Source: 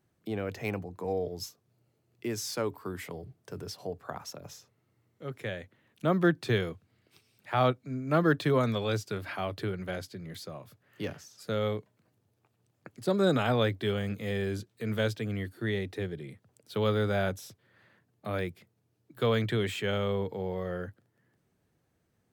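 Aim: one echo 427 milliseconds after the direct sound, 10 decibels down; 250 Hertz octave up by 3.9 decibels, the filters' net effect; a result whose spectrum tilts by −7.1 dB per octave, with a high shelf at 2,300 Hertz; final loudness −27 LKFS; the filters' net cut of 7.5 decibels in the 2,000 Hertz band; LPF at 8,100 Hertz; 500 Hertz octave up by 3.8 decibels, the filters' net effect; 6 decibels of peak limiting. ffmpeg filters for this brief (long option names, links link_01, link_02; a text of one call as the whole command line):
ffmpeg -i in.wav -af "lowpass=8100,equalizer=frequency=250:width_type=o:gain=4.5,equalizer=frequency=500:width_type=o:gain=4,equalizer=frequency=2000:width_type=o:gain=-6.5,highshelf=frequency=2300:gain=-8.5,alimiter=limit=-17dB:level=0:latency=1,aecho=1:1:427:0.316,volume=3.5dB" out.wav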